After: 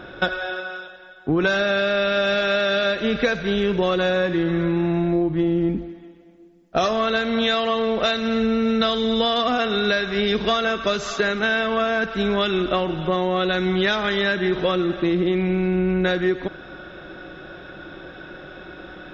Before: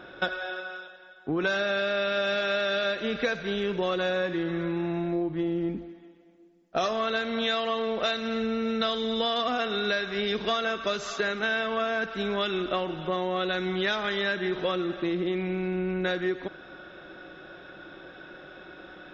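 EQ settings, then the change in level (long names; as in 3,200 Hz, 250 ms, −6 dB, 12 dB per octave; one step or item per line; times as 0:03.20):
low-shelf EQ 160 Hz +9 dB
+6.0 dB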